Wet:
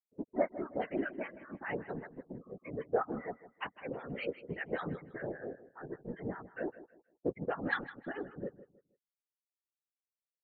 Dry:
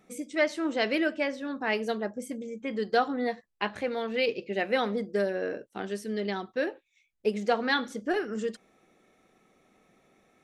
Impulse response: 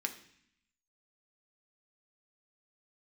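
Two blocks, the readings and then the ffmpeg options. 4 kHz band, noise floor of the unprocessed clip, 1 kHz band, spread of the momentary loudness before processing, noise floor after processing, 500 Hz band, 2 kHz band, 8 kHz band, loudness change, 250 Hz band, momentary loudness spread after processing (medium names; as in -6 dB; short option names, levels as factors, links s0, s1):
-19.0 dB, -73 dBFS, -9.5 dB, 8 LU, under -85 dBFS, -9.0 dB, -9.5 dB, under -30 dB, -9.5 dB, -9.0 dB, 11 LU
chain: -filter_complex "[0:a]aeval=exprs='sgn(val(0))*max(abs(val(0))-0.00794,0)':c=same,lowpass=1600,adynamicequalizer=threshold=0.00794:dfrequency=510:dqfactor=0.73:tfrequency=510:tqfactor=0.73:attack=5:release=100:ratio=0.375:range=2:mode=cutabove:tftype=bell,acrossover=split=980[s0][s1];[s0]aeval=exprs='val(0)*(1-1/2+1/2*cos(2*PI*5.1*n/s))':c=same[s2];[s1]aeval=exprs='val(0)*(1-1/2-1/2*cos(2*PI*5.1*n/s))':c=same[s3];[s2][s3]amix=inputs=2:normalize=0,afftfilt=real='re*gte(hypot(re,im),0.00708)':imag='im*gte(hypot(re,im),0.00708)':win_size=1024:overlap=0.75,afftfilt=real='hypot(re,im)*cos(2*PI*random(0))':imag='hypot(re,im)*sin(2*PI*random(1))':win_size=512:overlap=0.75,aecho=1:1:158|316|474:0.168|0.0487|0.0141,volume=1.78"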